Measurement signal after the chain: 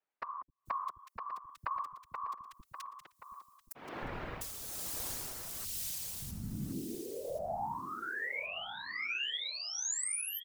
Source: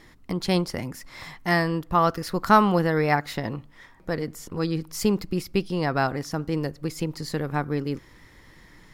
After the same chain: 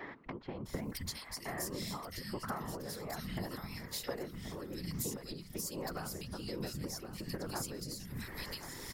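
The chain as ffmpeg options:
-filter_complex "[0:a]highshelf=f=5.4k:g=8,acrossover=split=150[a][b];[b]acompressor=threshold=-37dB:ratio=2.5[c];[a][c]amix=inputs=2:normalize=0,bass=f=250:g=-4,treble=f=4k:g=7,acrossover=split=180|2200[d][e][f];[d]adelay=260[g];[f]adelay=660[h];[g][e][h]amix=inputs=3:normalize=0,acompressor=threshold=-47dB:ratio=8,afftfilt=real='hypot(re,im)*cos(2*PI*random(0))':imag='hypot(re,im)*sin(2*PI*random(1))':win_size=512:overlap=0.75,tremolo=f=1.2:d=0.47,asplit=2[i][j];[j]aecho=0:1:1077|2154:0.282|0.0451[k];[i][k]amix=inputs=2:normalize=0,volume=16.5dB"

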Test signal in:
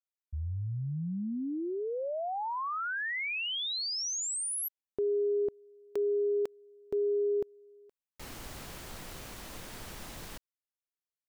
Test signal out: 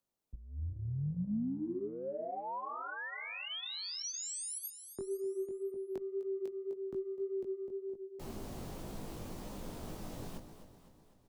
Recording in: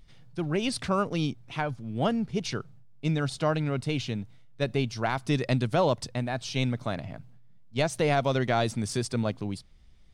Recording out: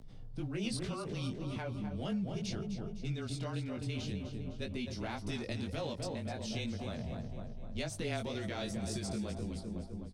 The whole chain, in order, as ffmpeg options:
-filter_complex "[0:a]aecho=1:1:254|508|762|1016|1270:0.282|0.135|0.0649|0.0312|0.015,acrossover=split=1200[a][b];[a]acompressor=threshold=-41dB:ratio=8:attack=4.2:release=41:knee=6:detection=rms[c];[b]aderivative[d];[c][d]amix=inputs=2:normalize=0,acompressor=mode=upward:threshold=-59dB:ratio=1.5:release=37:knee=2.83:detection=peak,flanger=delay=17.5:depth=3.8:speed=1.9,afreqshift=-22,lowpass=f=2.4k:p=1,equalizer=f=210:w=0.97:g=4.5,volume=5.5dB"

